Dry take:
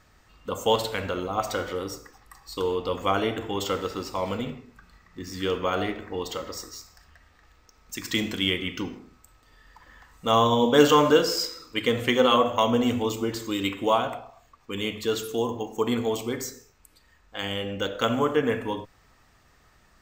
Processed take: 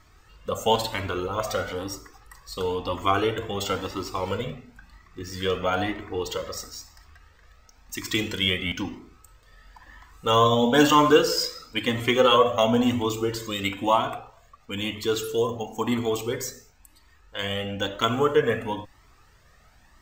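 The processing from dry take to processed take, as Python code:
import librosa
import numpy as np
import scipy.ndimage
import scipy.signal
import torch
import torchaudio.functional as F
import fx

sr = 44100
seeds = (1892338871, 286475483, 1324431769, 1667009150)

y = fx.buffer_glitch(x, sr, at_s=(8.66,), block=512, repeats=4)
y = fx.comb_cascade(y, sr, direction='rising', hz=1.0)
y = y * 10.0 ** (6.0 / 20.0)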